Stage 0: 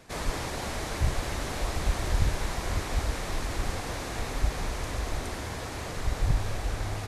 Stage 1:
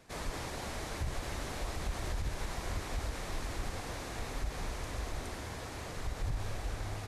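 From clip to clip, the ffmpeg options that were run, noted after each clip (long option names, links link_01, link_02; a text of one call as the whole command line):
ffmpeg -i in.wav -af "alimiter=limit=-20dB:level=0:latency=1:release=61,volume=-6.5dB" out.wav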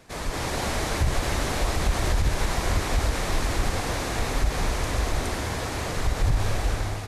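ffmpeg -i in.wav -af "dynaudnorm=framelen=110:gausssize=7:maxgain=6dB,volume=7dB" out.wav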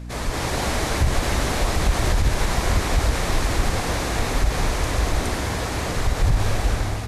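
ffmpeg -i in.wav -af "aeval=exprs='val(0)+0.0158*(sin(2*PI*60*n/s)+sin(2*PI*2*60*n/s)/2+sin(2*PI*3*60*n/s)/3+sin(2*PI*4*60*n/s)/4+sin(2*PI*5*60*n/s)/5)':channel_layout=same,volume=3.5dB" out.wav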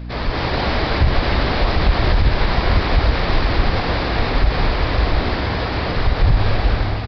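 ffmpeg -i in.wav -af "aresample=11025,aresample=44100,volume=4.5dB" out.wav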